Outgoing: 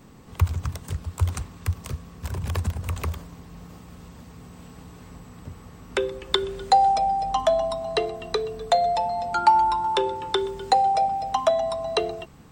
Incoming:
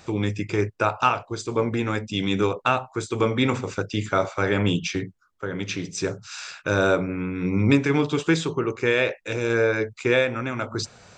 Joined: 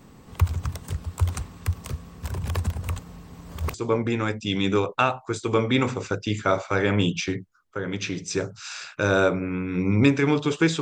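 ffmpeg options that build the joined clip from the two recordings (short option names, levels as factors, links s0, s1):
-filter_complex "[0:a]apad=whole_dur=10.81,atrim=end=10.81,asplit=2[s0][s1];[s0]atrim=end=2.992[s2];[s1]atrim=start=2.988:end=3.742,asetpts=PTS-STARTPTS,areverse[s3];[1:a]atrim=start=1.408:end=8.48[s4];[s2][s3]acrossfade=d=0.004:c1=hsin:c2=hsin[s5];[s5][s4]acrossfade=d=0.004:c1=hsin:c2=hsin"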